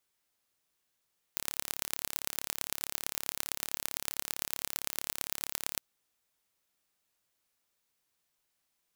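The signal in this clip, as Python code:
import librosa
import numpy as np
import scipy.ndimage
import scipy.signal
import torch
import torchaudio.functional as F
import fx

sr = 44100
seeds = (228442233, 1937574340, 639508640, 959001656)

y = fx.impulse_train(sr, length_s=4.42, per_s=35.4, accent_every=4, level_db=-3.5)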